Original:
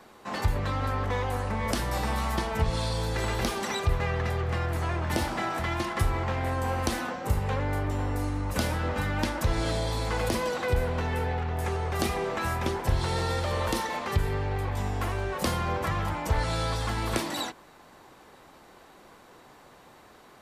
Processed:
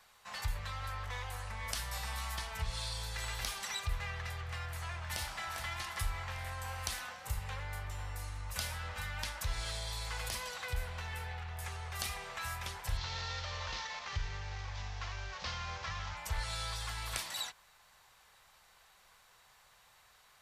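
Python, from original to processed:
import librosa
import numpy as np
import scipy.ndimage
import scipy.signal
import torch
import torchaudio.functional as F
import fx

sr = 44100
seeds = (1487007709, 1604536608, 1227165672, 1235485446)

y = fx.echo_throw(x, sr, start_s=5.07, length_s=0.46, ms=400, feedback_pct=60, wet_db=-8.5)
y = fx.cvsd(y, sr, bps=32000, at=(12.97, 16.17))
y = fx.tone_stack(y, sr, knobs='10-0-10')
y = y * librosa.db_to_amplitude(-2.5)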